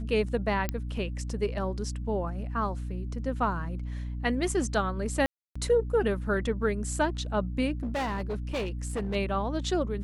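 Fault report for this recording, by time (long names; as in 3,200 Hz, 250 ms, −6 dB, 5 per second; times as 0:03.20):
mains hum 60 Hz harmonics 5 −34 dBFS
0:00.69: click −15 dBFS
0:05.26–0:05.55: drop-out 295 ms
0:07.83–0:09.16: clipping −27 dBFS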